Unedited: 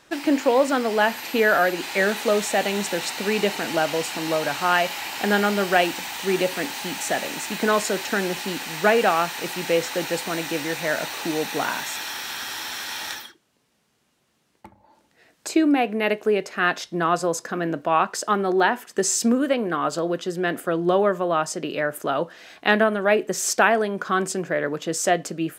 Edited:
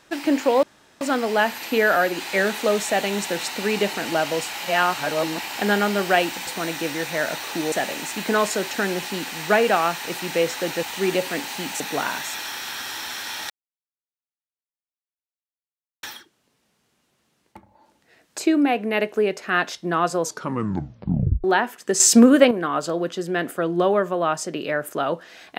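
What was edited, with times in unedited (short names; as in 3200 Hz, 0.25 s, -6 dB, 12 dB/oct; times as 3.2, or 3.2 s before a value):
0.63 insert room tone 0.38 s
4.15–5.02 reverse
6.09–7.06 swap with 10.17–11.42
13.12 insert silence 2.53 s
17.31 tape stop 1.22 s
19.09–19.6 gain +8 dB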